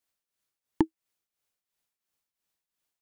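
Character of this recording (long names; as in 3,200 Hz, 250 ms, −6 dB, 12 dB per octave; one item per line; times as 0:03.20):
tremolo triangle 2.9 Hz, depth 75%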